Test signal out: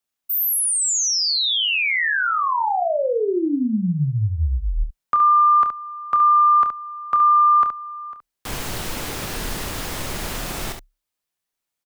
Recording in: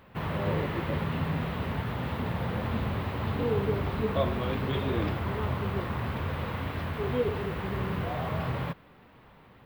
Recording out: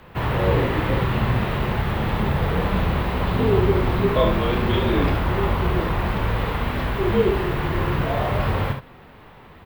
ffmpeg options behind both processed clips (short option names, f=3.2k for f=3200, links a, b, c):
-af "aecho=1:1:28|70:0.376|0.422,afreqshift=-34,volume=8.5dB"